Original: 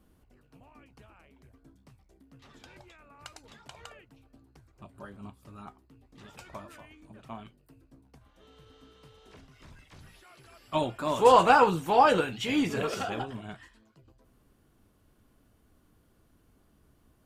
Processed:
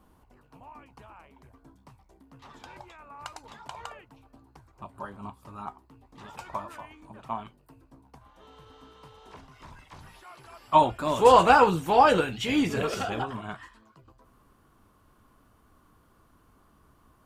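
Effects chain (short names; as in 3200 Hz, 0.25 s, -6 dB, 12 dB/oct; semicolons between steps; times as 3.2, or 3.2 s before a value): bell 950 Hz +12 dB 0.78 oct, from 10.91 s 60 Hz, from 13.22 s 1100 Hz; gain +2 dB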